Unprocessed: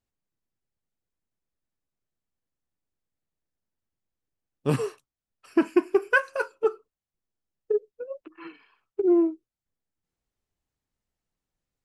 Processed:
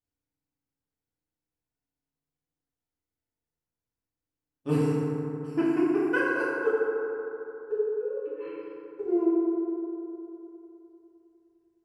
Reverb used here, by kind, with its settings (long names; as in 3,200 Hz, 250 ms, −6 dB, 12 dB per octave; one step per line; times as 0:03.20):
feedback delay network reverb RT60 3.2 s, high-frequency decay 0.35×, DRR −10 dB
level −12.5 dB